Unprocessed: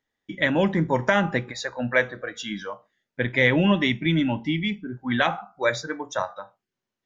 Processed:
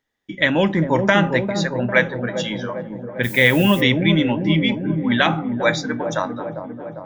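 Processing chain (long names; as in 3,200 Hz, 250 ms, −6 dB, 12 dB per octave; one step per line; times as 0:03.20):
dynamic equaliser 3,200 Hz, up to +4 dB, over −36 dBFS, Q 1.1
0:03.23–0:03.80: background noise violet −38 dBFS
delay with a low-pass on its return 400 ms, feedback 64%, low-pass 610 Hz, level −4 dB
level +3.5 dB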